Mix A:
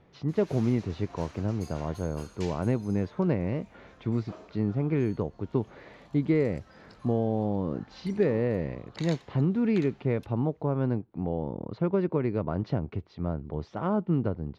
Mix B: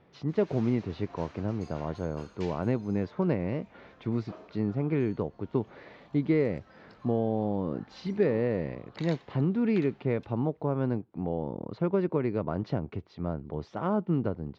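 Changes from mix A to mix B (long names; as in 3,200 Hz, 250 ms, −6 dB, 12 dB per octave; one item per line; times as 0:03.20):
background: add high-frequency loss of the air 130 metres
master: add low-shelf EQ 72 Hz −11 dB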